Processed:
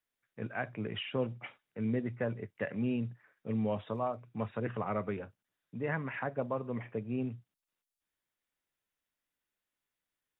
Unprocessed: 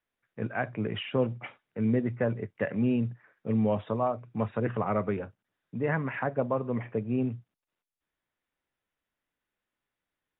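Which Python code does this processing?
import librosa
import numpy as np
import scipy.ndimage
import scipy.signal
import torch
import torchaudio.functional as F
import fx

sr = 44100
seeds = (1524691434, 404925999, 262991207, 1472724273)

y = fx.high_shelf(x, sr, hz=3000.0, db=9.0)
y = y * 10.0 ** (-6.5 / 20.0)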